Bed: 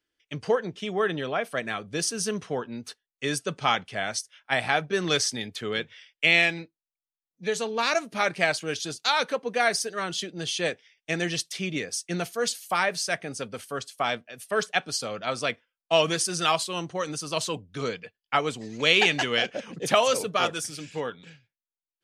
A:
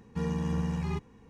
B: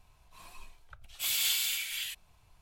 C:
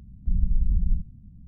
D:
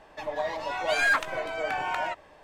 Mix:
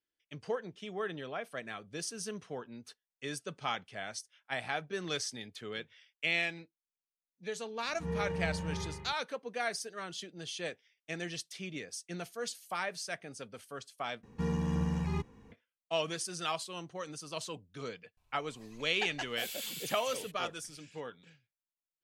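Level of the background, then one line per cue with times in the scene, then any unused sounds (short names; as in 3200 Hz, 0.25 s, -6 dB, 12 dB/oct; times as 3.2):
bed -11.5 dB
7.84 add A -13 dB + spring tank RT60 1.2 s, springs 41 ms, chirp 75 ms, DRR -9 dB
14.23 replace with A -1.5 dB
18.17 add B -12 dB
not used: C, D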